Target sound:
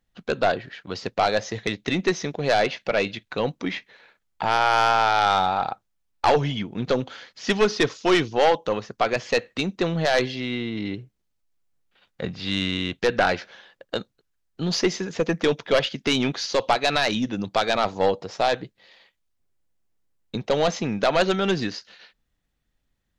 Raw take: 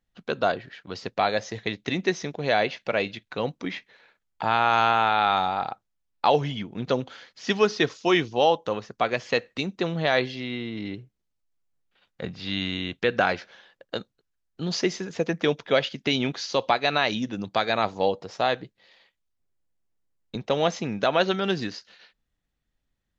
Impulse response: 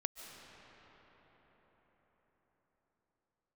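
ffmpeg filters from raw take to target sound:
-af "aeval=exprs='0.531*(cos(1*acos(clip(val(0)/0.531,-1,1)))-cos(1*PI/2))+0.237*(cos(2*acos(clip(val(0)/0.531,-1,1)))-cos(2*PI/2))+0.106*(cos(5*acos(clip(val(0)/0.531,-1,1)))-cos(5*PI/2))':c=same,volume=-2dB"

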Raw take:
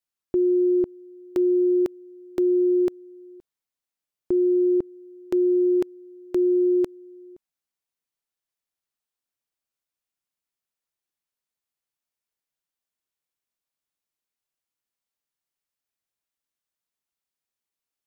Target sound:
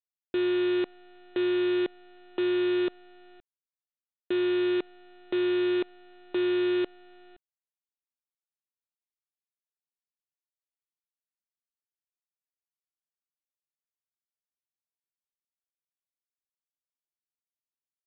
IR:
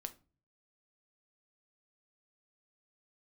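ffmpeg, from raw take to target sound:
-af "highpass=240,aresample=8000,acrusher=bits=5:dc=4:mix=0:aa=0.000001,aresample=44100,volume=-5.5dB"

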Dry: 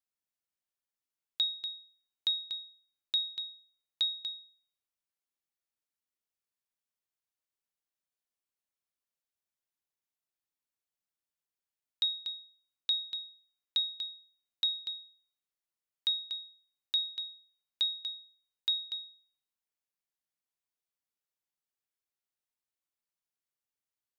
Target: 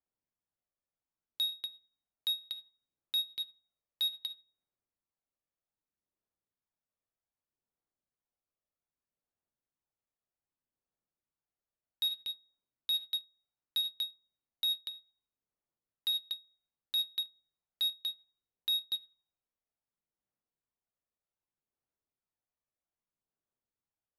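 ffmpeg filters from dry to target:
-af "aphaser=in_gain=1:out_gain=1:delay=1.7:decay=0.3:speed=0.64:type=sinusoidal,volume=30dB,asoftclip=hard,volume=-30dB,adynamicsmooth=sensitivity=7:basefreq=1.2k,volume=4.5dB"

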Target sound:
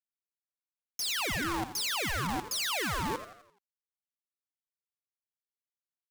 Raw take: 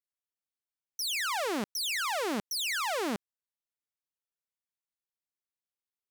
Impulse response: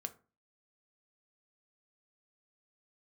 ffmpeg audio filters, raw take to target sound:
-filter_complex "[0:a]acrusher=bits=5:mix=0:aa=0.000001,asplit=2[a][b];[b]aecho=0:1:85|170|255|340|425:0.251|0.118|0.0555|0.0261|0.0123[c];[a][c]amix=inputs=2:normalize=0,aeval=exprs='val(0)*sin(2*PI*740*n/s+740*0.3/1.5*sin(2*PI*1.5*n/s))':c=same,volume=2.5dB"

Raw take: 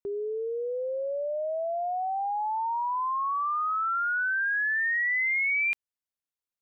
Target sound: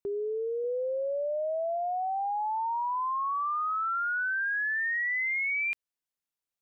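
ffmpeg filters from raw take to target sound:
-filter_complex "[0:a]acontrast=38,asettb=1/sr,asplit=3[a][b][c];[a]atrim=end=0.644[d];[b]atrim=start=0.64:end=1.77,asetpts=PTS-STARTPTS,afade=t=in:d=0.004:c=qsin,afade=t=out:st=1.126:d=0.004:c=qsin,lowshelf=f=200:g=9[e];[c]atrim=start=1.766[f];[d][e]acrossfade=d=0.004:c1=hsin:c2=qsin[g];[g][f]acrossfade=d=0.004:c1=qsin:c2=hsin,acompressor=threshold=-23dB:ratio=6,volume=-5dB"

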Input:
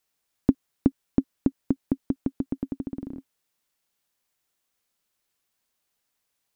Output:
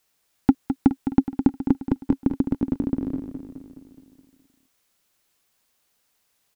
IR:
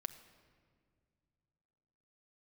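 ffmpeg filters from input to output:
-af "asoftclip=type=tanh:threshold=-13dB,aecho=1:1:210|420|630|840|1050|1260|1470:0.355|0.202|0.115|0.0657|0.0375|0.0213|0.0122,volume=7.5dB"

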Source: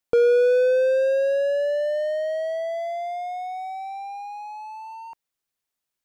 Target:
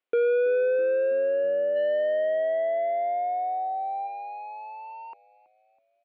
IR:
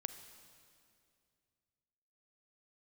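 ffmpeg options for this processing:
-filter_complex "[0:a]asplit=3[a][b][c];[a]afade=t=out:st=1.75:d=0.02[d];[b]acontrast=30,afade=t=in:st=1.75:d=0.02,afade=t=out:st=4.06:d=0.02[e];[c]afade=t=in:st=4.06:d=0.02[f];[d][e][f]amix=inputs=3:normalize=0,asoftclip=type=tanh:threshold=-25dB,highpass=330,equalizer=f=410:t=q:w=4:g=8,equalizer=f=870:t=q:w=4:g=-5,equalizer=f=1.7k:t=q:w=4:g=-5,lowpass=f=3.1k:w=0.5412,lowpass=f=3.1k:w=1.3066,asplit=5[g][h][i][j][k];[h]adelay=326,afreqshift=-71,volume=-20.5dB[l];[i]adelay=652,afreqshift=-142,volume=-26.2dB[m];[j]adelay=978,afreqshift=-213,volume=-31.9dB[n];[k]adelay=1304,afreqshift=-284,volume=-37.5dB[o];[g][l][m][n][o]amix=inputs=5:normalize=0,volume=2.5dB"

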